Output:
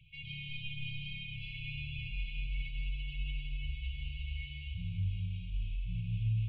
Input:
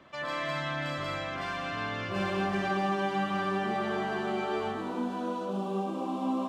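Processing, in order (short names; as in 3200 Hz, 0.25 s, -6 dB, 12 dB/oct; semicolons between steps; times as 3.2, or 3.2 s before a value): limiter -25 dBFS, peak gain reduction 7 dB; mistuned SSB -150 Hz 150–3200 Hz; brick-wall FIR band-stop 170–2200 Hz; gain +2.5 dB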